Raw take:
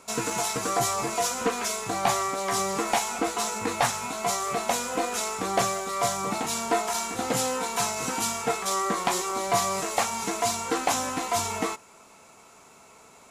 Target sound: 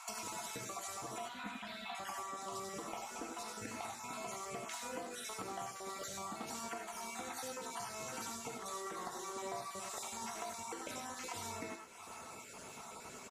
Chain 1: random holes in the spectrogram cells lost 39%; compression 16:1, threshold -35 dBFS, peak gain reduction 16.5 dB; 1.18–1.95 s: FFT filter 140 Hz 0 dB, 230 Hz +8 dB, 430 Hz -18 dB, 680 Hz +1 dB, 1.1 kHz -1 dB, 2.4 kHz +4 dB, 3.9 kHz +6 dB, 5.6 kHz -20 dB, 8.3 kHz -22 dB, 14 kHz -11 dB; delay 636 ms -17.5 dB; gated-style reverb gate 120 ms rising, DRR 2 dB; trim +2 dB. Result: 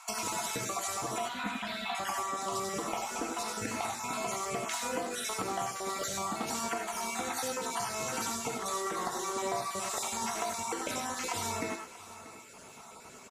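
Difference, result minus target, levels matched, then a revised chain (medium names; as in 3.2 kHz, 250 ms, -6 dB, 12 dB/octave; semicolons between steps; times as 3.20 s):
compression: peak gain reduction -9.5 dB
random holes in the spectrogram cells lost 39%; compression 16:1, threshold -45 dBFS, peak gain reduction 26 dB; 1.18–1.95 s: FFT filter 140 Hz 0 dB, 230 Hz +8 dB, 430 Hz -18 dB, 680 Hz +1 dB, 1.1 kHz -1 dB, 2.4 kHz +4 dB, 3.9 kHz +6 dB, 5.6 kHz -20 dB, 8.3 kHz -22 dB, 14 kHz -11 dB; delay 636 ms -17.5 dB; gated-style reverb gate 120 ms rising, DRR 2 dB; trim +2 dB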